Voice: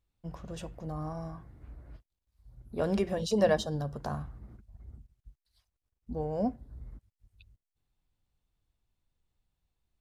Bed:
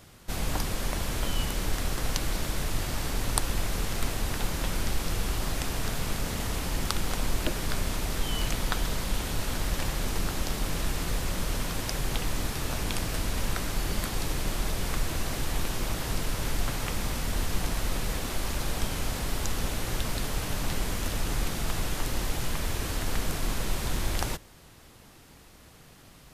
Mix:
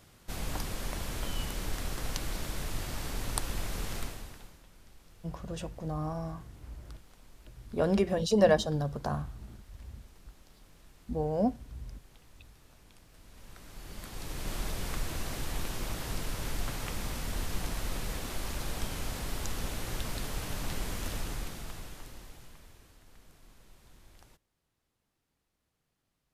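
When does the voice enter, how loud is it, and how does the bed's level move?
5.00 s, +2.5 dB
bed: 0:03.97 −6 dB
0:04.65 −28 dB
0:13.10 −28 dB
0:14.54 −5.5 dB
0:21.15 −5.5 dB
0:22.98 −28.5 dB

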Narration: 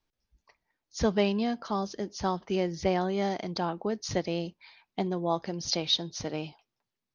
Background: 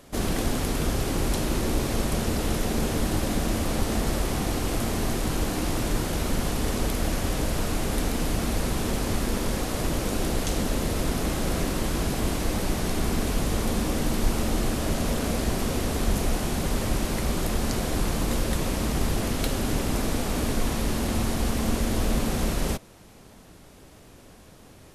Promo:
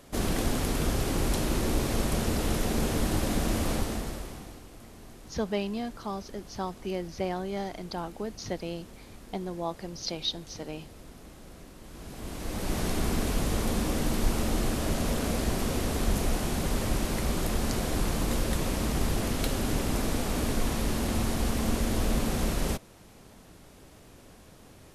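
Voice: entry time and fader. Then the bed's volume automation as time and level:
4.35 s, −4.5 dB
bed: 0:03.72 −2 dB
0:04.69 −22 dB
0:11.79 −22 dB
0:12.78 −2.5 dB

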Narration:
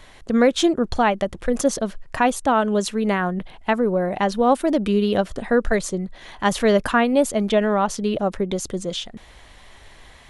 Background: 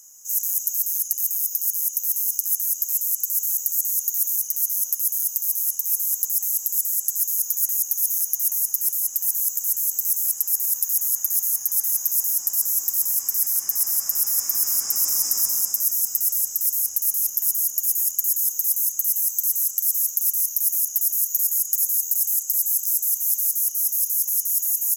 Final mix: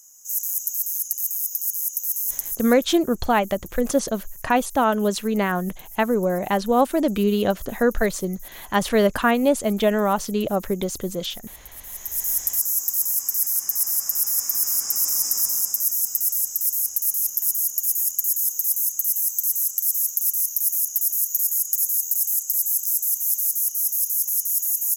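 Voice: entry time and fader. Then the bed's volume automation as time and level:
2.30 s, −1.0 dB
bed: 0:02.34 −2 dB
0:03.04 −20.5 dB
0:11.75 −20.5 dB
0:12.29 −0.5 dB

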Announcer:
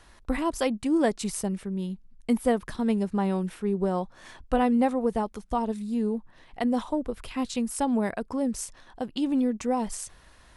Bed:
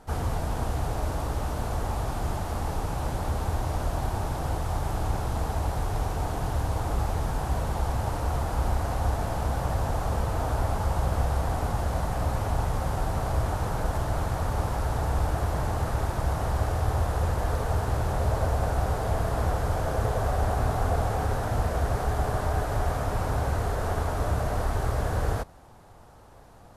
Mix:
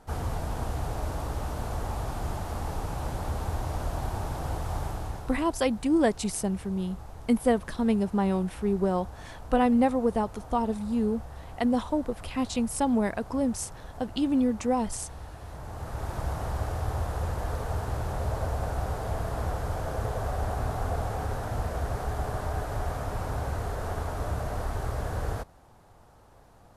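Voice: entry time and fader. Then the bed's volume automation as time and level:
5.00 s, +0.5 dB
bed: 0:04.83 −3 dB
0:05.59 −16.5 dB
0:15.38 −16.5 dB
0:16.15 −4.5 dB

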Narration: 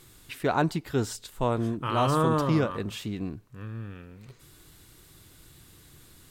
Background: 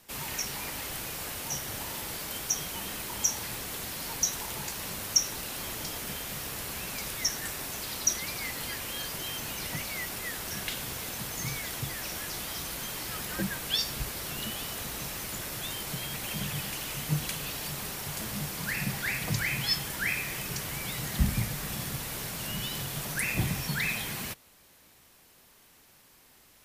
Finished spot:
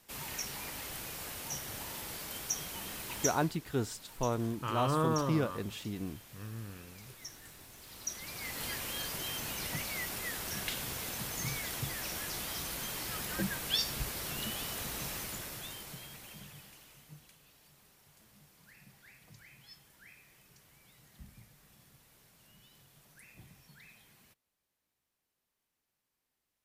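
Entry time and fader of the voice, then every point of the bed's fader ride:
2.80 s, −6.0 dB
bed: 0:03.25 −5.5 dB
0:03.57 −18 dB
0:07.76 −18 dB
0:08.65 −2.5 dB
0:15.15 −2.5 dB
0:17.37 −27 dB

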